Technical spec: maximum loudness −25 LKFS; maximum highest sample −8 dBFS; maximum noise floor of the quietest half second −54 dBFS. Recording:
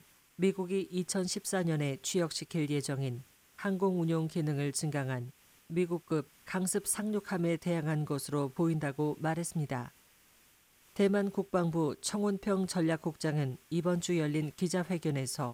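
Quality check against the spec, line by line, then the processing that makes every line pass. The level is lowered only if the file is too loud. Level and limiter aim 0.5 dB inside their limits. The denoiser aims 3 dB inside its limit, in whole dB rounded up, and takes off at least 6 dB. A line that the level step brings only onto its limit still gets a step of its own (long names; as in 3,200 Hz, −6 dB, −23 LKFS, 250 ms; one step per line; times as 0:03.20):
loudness −33.0 LKFS: in spec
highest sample −17.5 dBFS: in spec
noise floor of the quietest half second −65 dBFS: in spec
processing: no processing needed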